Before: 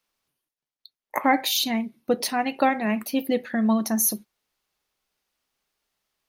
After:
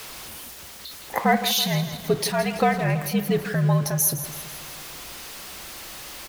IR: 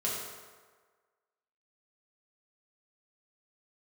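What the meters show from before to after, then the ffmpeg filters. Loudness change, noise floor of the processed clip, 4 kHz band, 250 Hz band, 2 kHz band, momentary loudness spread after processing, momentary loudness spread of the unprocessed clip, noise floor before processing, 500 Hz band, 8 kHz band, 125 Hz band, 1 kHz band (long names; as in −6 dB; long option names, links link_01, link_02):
+1.0 dB, −42 dBFS, +2.0 dB, −2.0 dB, +1.5 dB, 15 LU, 6 LU, below −85 dBFS, +2.5 dB, +2.0 dB, can't be measured, 0.0 dB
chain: -af "aeval=exprs='val(0)+0.5*0.0237*sgn(val(0))':channel_layout=same,afreqshift=-67,aecho=1:1:164|328|492|656|820|984:0.237|0.135|0.077|0.0439|0.025|0.0143"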